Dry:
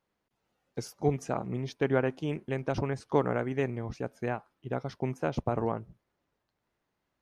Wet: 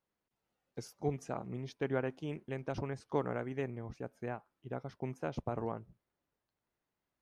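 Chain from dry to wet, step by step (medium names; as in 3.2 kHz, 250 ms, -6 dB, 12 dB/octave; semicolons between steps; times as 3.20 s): 3.61–5.03 s: dynamic bell 4.6 kHz, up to -5 dB, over -58 dBFS, Q 0.76; trim -7.5 dB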